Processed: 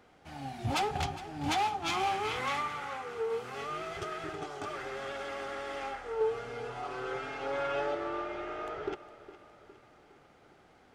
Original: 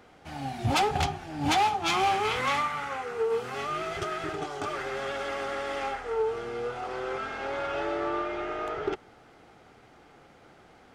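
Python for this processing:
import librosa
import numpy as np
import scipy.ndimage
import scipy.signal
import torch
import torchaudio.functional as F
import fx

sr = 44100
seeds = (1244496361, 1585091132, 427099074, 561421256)

p1 = fx.comb(x, sr, ms=7.1, depth=0.97, at=(6.2, 7.95))
p2 = p1 + fx.echo_feedback(p1, sr, ms=410, feedback_pct=52, wet_db=-16, dry=0)
y = p2 * librosa.db_to_amplitude(-6.0)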